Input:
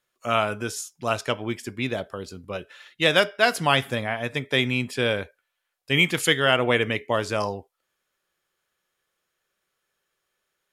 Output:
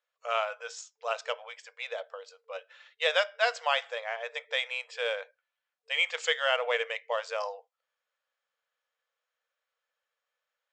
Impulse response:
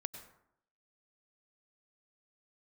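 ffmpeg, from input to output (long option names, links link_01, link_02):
-af "adynamicsmooth=sensitivity=5:basefreq=6000,afftfilt=real='re*between(b*sr/4096,450,8200)':imag='im*between(b*sr/4096,450,8200)':win_size=4096:overlap=0.75,volume=-6.5dB"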